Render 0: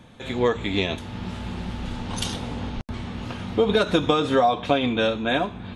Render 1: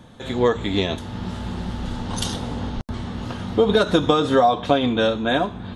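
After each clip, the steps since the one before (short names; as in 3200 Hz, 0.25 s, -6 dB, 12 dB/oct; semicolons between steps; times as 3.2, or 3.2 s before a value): bell 2400 Hz -8 dB 0.45 oct; gain +3 dB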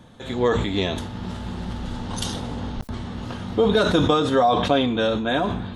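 sustainer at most 43 dB/s; gain -2.5 dB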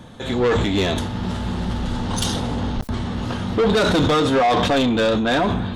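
soft clip -20.5 dBFS, distortion -9 dB; gain +7 dB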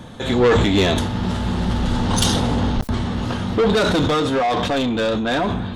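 vocal rider 2 s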